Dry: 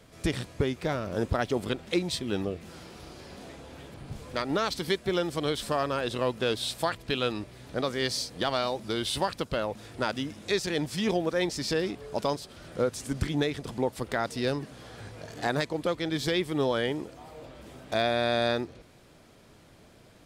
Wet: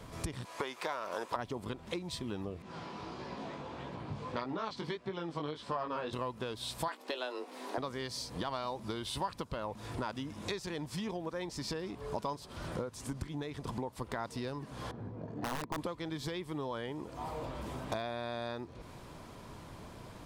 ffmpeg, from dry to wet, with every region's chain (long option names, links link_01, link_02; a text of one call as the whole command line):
ffmpeg -i in.wav -filter_complex "[0:a]asettb=1/sr,asplit=3[link_01][link_02][link_03];[link_01]atrim=end=0.454[link_04];[link_02]atrim=start=0.45:end=1.36,asetpts=PTS-STARTPTS,afade=type=in:duration=0.004:curve=qsin,afade=type=out:start_time=0.906:duration=0.004:curve=qsin,highpass=680,acontrast=66[link_05];[link_03]atrim=start=1.356[link_06];[link_04][link_05]acrossfade=duration=0.004:curve1=hsin:curve2=qsin[link_07];[link_07][link_06]acrossfade=duration=0.004:curve1=qsin:curve2=hsin,asettb=1/sr,asplit=3[link_08][link_09][link_10];[link_08]atrim=end=2.624[link_11];[link_09]atrim=start=2.62:end=6.13,asetpts=PTS-STARTPTS,afade=type=in:duration=0.004:curve=qsin,afade=type=out:start_time=3.506:duration=0.004:curve=qsin,highpass=130,lowpass=4600,flanger=delay=15.5:depth=4.9:speed=1.6[link_12];[link_10]atrim=start=6.126[link_13];[link_11][link_12]acrossfade=duration=0.004:curve1=hsin:curve2=qsin[link_14];[link_14][link_13]acrossfade=duration=0.004:curve1=qsin:curve2=hsin,asettb=1/sr,asplit=3[link_15][link_16][link_17];[link_15]atrim=end=6.884[link_18];[link_16]atrim=start=6.88:end=7.78,asetpts=PTS-STARTPTS,afade=type=in:duration=0.004:curve=qsin,afade=type=out:start_time=0.896:duration=0.004:curve=qsin,highpass=190,afreqshift=130,asplit=2[link_19][link_20];[link_20]adelay=20,volume=-11dB[link_21];[link_19][link_21]amix=inputs=2:normalize=0,atrim=end_sample=39690[link_22];[link_17]atrim=start=7.776[link_23];[link_18][link_22]acrossfade=duration=0.004:curve1=hsin:curve2=qsin[link_24];[link_24][link_23]acrossfade=duration=0.004:curve1=qsin:curve2=hsin,asettb=1/sr,asplit=3[link_25][link_26][link_27];[link_25]atrim=end=14.914[link_28];[link_26]atrim=start=14.91:end=15.78,asetpts=PTS-STARTPTS,afade=type=in:duration=0.004:curve=qsin,afade=type=out:start_time=0.866:duration=0.004:curve=qsin,bandpass=frequency=240:width_type=q:width=1.2,aeval=exprs='(mod(26.6*val(0)+1,2)-1)/26.6':channel_layout=same[link_29];[link_27]atrim=start=15.776[link_30];[link_28][link_29]acrossfade=duration=0.004:curve1=hsin:curve2=qsin[link_31];[link_31][link_30]acrossfade=duration=0.004:curve1=qsin:curve2=hsin,lowshelf=frequency=250:gain=6,acompressor=threshold=-38dB:ratio=16,equalizer=frequency=1000:width_type=o:width=0.48:gain=11,volume=2.5dB" out.wav